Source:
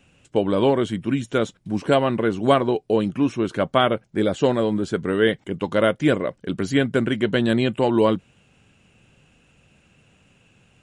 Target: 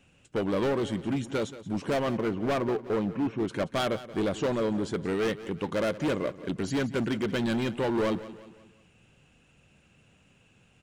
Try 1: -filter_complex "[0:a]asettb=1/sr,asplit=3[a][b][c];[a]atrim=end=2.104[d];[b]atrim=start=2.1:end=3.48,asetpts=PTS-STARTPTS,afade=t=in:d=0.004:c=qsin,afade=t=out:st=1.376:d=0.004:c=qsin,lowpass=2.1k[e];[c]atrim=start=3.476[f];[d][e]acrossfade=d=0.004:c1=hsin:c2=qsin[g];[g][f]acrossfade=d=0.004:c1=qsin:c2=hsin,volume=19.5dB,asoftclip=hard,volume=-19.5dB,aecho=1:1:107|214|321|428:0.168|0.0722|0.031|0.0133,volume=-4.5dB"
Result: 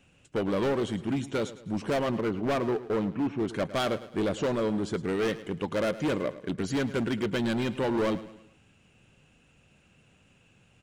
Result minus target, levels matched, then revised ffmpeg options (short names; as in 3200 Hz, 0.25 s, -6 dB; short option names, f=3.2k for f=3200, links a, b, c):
echo 71 ms early
-filter_complex "[0:a]asettb=1/sr,asplit=3[a][b][c];[a]atrim=end=2.104[d];[b]atrim=start=2.1:end=3.48,asetpts=PTS-STARTPTS,afade=t=in:d=0.004:c=qsin,afade=t=out:st=1.376:d=0.004:c=qsin,lowpass=2.1k[e];[c]atrim=start=3.476[f];[d][e]acrossfade=d=0.004:c1=hsin:c2=qsin[g];[g][f]acrossfade=d=0.004:c1=qsin:c2=hsin,volume=19.5dB,asoftclip=hard,volume=-19.5dB,aecho=1:1:178|356|534|712:0.168|0.0722|0.031|0.0133,volume=-4.5dB"